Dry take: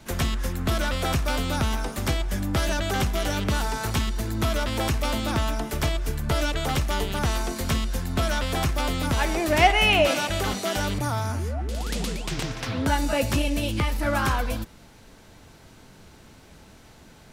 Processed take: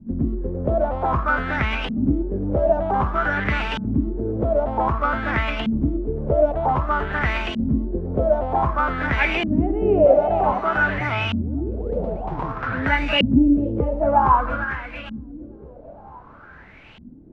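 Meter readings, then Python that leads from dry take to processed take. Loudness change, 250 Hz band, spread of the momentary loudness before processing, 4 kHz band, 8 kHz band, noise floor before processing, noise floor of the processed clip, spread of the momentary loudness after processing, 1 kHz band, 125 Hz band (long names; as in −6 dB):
+4.0 dB, +6.5 dB, 7 LU, −3.5 dB, below −20 dB, −50 dBFS, −44 dBFS, 10 LU, +6.0 dB, +1.0 dB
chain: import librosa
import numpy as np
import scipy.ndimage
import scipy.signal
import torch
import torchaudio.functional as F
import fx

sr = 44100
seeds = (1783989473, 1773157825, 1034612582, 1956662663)

y = fx.echo_feedback(x, sr, ms=454, feedback_pct=53, wet_db=-11.0)
y = fx.vibrato(y, sr, rate_hz=4.1, depth_cents=26.0)
y = fx.filter_lfo_lowpass(y, sr, shape='saw_up', hz=0.53, low_hz=210.0, high_hz=3000.0, q=7.0)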